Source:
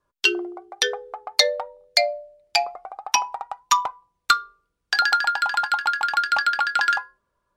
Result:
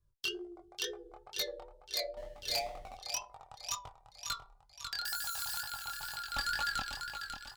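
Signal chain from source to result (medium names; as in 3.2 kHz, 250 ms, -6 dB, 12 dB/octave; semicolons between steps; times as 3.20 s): 5.05–5.61 s: zero-crossing glitches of -17.5 dBFS; in parallel at -1 dB: compression, threshold -29 dBFS, peak gain reduction 16.5 dB; on the sum: graphic EQ 125/250/2000 Hz +7/-12/-6 dB; 6.35–6.80 s: waveshaping leveller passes 3; on a send: feedback delay 545 ms, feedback 44%, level -8 dB; 2.17–2.97 s: on the sum: power-law waveshaper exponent 0.7; amplifier tone stack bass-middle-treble 10-0-1; sine folder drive 8 dB, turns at -22.5 dBFS; chorus 2.1 Hz, delay 19 ms, depth 7.1 ms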